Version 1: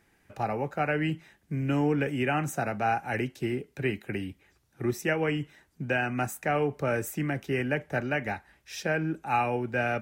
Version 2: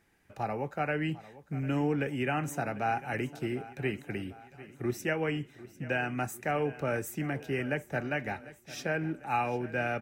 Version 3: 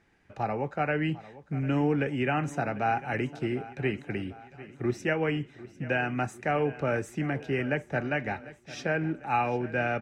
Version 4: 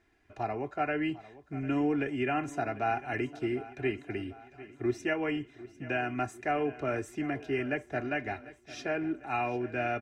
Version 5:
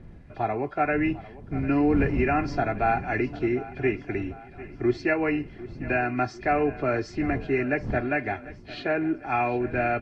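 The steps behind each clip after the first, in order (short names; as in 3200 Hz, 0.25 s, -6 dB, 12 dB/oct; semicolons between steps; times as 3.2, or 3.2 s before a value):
feedback echo 0.749 s, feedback 54%, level -17.5 dB; gain -3.5 dB
air absorption 84 m; gain +3.5 dB
comb 2.9 ms, depth 70%; gain -4.5 dB
nonlinear frequency compression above 2400 Hz 1.5:1; wind noise 160 Hz -44 dBFS; gain +6.5 dB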